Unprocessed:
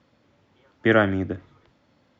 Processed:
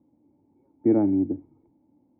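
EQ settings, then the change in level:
formant resonators in series u
parametric band 2,300 Hz +6 dB 0.25 octaves
+7.0 dB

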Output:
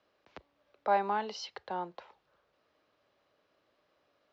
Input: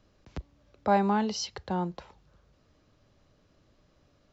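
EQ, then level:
high-pass filter 130 Hz 6 dB per octave
three-way crossover with the lows and the highs turned down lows −17 dB, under 380 Hz, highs −19 dB, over 4,500 Hz
−2.0 dB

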